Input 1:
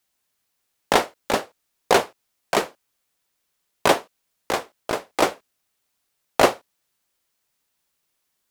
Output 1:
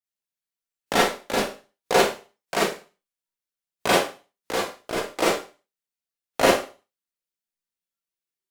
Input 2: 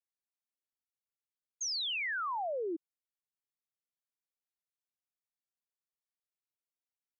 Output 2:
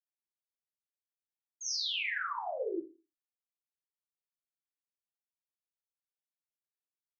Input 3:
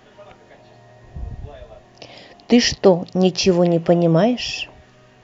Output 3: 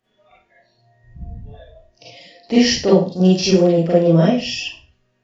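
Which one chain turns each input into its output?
spectral noise reduction 18 dB; peaking EQ 890 Hz -4 dB 0.94 oct; Schroeder reverb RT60 0.34 s, combs from 33 ms, DRR -7 dB; trim -7 dB

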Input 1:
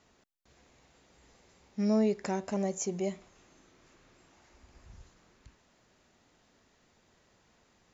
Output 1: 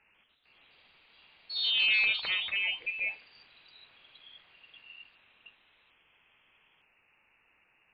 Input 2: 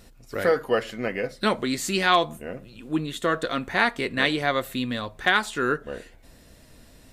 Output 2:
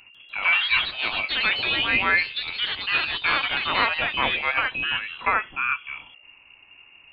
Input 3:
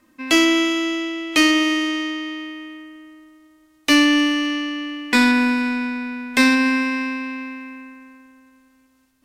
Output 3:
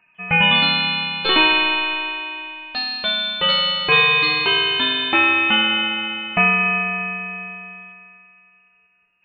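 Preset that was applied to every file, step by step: frequency inversion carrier 2.8 kHz; ever faster or slower copies 146 ms, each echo +3 st, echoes 3; trim -1 dB

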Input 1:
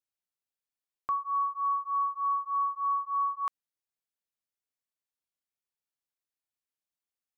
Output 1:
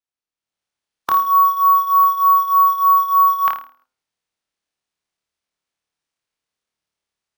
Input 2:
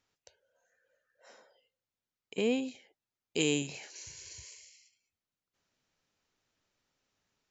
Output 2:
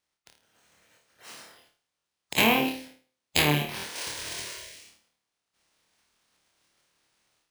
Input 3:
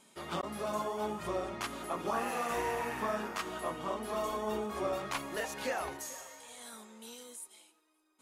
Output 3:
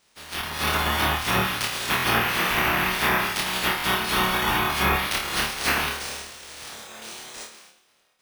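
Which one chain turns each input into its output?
spectral peaks clipped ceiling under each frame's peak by 28 dB; de-hum 129.2 Hz, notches 12; low-pass that closes with the level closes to 1.4 kHz, closed at -27.5 dBFS; dynamic bell 530 Hz, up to -7 dB, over -53 dBFS, Q 1.5; level rider gain up to 11 dB; in parallel at -10 dB: bit crusher 5-bit; on the sum: one-sided clip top -14 dBFS; on a send: flutter echo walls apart 4.6 m, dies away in 0.39 s; on the sum: careless resampling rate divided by 3×, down filtered, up hold; buffer glitch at 1.97/3.77 s, samples 1024, times 2

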